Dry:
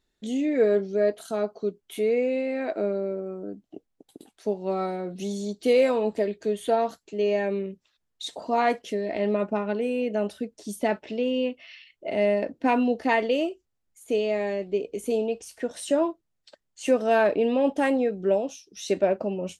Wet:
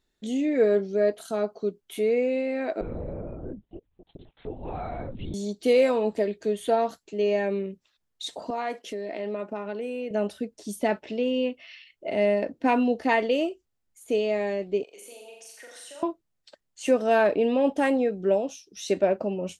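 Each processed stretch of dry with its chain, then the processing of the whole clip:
0:02.81–0:05.34: comb filter 4.1 ms + downward compressor, threshold −30 dBFS + linear-prediction vocoder at 8 kHz whisper
0:08.50–0:10.11: high-pass filter 230 Hz + downward compressor 2 to 1, threshold −32 dBFS
0:14.83–0:16.03: high-pass filter 970 Hz + downward compressor, threshold −44 dBFS + flutter between parallel walls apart 7.2 metres, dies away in 0.74 s
whole clip: no processing

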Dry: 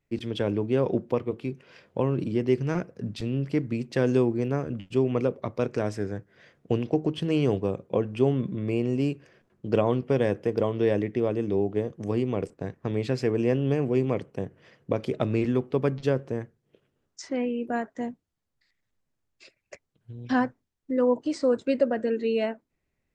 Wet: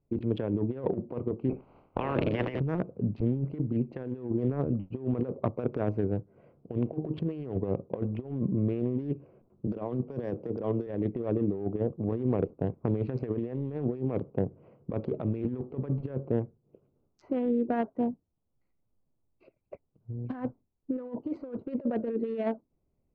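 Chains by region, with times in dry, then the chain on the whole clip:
0:01.49–0:02.59: ceiling on every frequency bin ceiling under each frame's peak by 28 dB + low-pass filter 3,600 Hz + flutter between parallel walls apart 9.9 metres, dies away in 0.25 s
0:09.67–0:10.87: high-pass filter 110 Hz 24 dB per octave + high shelf with overshoot 3,700 Hz +8 dB, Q 1.5
whole clip: adaptive Wiener filter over 25 samples; Bessel low-pass filter 1,600 Hz, order 2; compressor whose output falls as the input rises −29 dBFS, ratio −0.5

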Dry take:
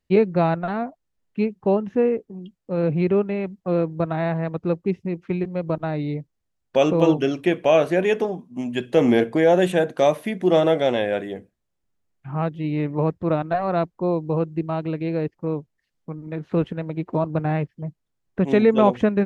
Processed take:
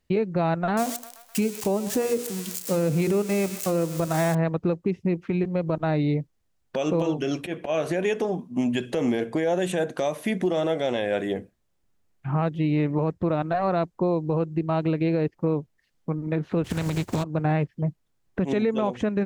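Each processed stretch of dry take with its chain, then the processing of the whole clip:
0:00.77–0:04.35: spike at every zero crossing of −26 dBFS + mains-hum notches 60/120/180/240/300/360/420/480/540 Hz + feedback echo with a high-pass in the loop 129 ms, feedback 73%, high-pass 740 Hz, level −15.5 dB
0:07.20–0:07.95: volume swells 271 ms + double-tracking delay 13 ms −12 dB
0:16.64–0:17.22: compressing power law on the bin magnitudes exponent 0.46 + parametric band 100 Hz +15 dB 2.6 octaves
whole clip: dynamic equaliser 7,300 Hz, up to +7 dB, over −50 dBFS, Q 1; downward compressor 6 to 1, threshold −25 dBFS; brickwall limiter −21 dBFS; level +5.5 dB

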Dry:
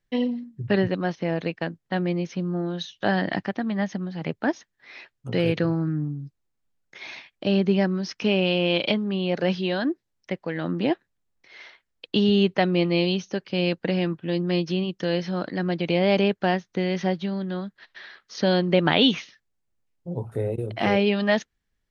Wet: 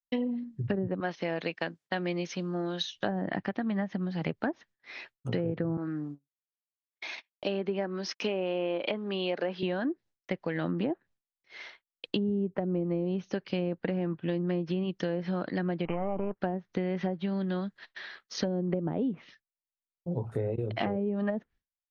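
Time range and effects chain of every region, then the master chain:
0:01.00–0:02.96: high-pass filter 210 Hz 6 dB per octave + spectral tilt +1.5 dB per octave
0:05.77–0:09.63: high-pass filter 330 Hz + noise gate −41 dBFS, range −29 dB
0:15.85–0:16.38: gain on one half-wave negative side −12 dB + linear-phase brick-wall low-pass 3,100 Hz + flat-topped bell 1,000 Hz +8 dB 1 octave
whole clip: treble cut that deepens with the level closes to 480 Hz, closed at −16.5 dBFS; downward expander −46 dBFS; downward compressor, threshold −27 dBFS

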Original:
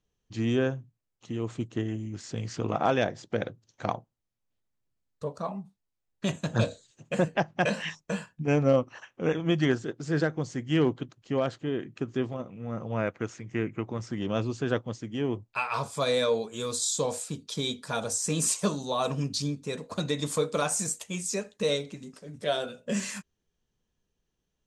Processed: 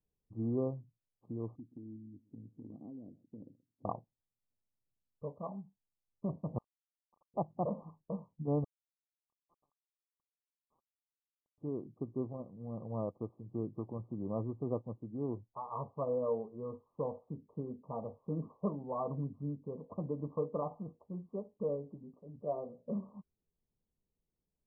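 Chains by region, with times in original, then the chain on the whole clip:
0:01.55–0:03.85: formant resonators in series i + downward compressor, threshold −36 dBFS + single-tap delay 127 ms −20.5 dB
0:06.58–0:07.34: Chebyshev high-pass with heavy ripple 1,600 Hz, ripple 9 dB + double-tracking delay 34 ms −5 dB
0:08.64–0:11.58: linear-phase brick-wall high-pass 2,400 Hz + notch filter 5,600 Hz
whole clip: adaptive Wiener filter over 25 samples; Chebyshev low-pass filter 1,200 Hz, order 10; level −7 dB

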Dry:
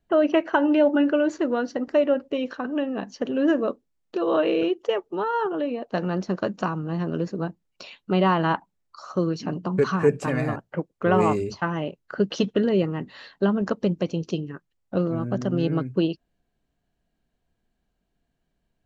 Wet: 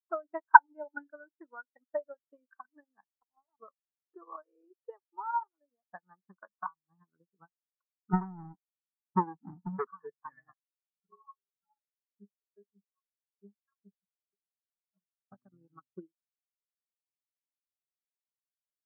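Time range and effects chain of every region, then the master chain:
0:03.10–0:03.60: downward compressor 2 to 1, threshold −42 dBFS + highs frequency-modulated by the lows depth 0.92 ms
0:08.13–0:09.87: inverse Chebyshev band-stop filter 840–4,600 Hz + leveller curve on the samples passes 5
0:10.53–0:15.32: parametric band 2,800 Hz −5 dB 0.72 octaves + stiff-string resonator 200 Hz, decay 0.25 s, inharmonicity 0.008 + phaser with staggered stages 1.7 Hz
whole clip: flat-topped bell 1,300 Hz +14.5 dB; transient designer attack +11 dB, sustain −8 dB; every bin expanded away from the loudest bin 2.5 to 1; level −16 dB

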